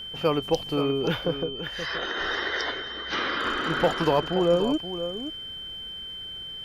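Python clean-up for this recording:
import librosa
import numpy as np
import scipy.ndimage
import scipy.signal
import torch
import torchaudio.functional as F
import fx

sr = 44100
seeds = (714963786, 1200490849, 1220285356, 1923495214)

y = fx.fix_declip(x, sr, threshold_db=-12.0)
y = fx.notch(y, sr, hz=3100.0, q=30.0)
y = fx.fix_echo_inverse(y, sr, delay_ms=526, level_db=-10.5)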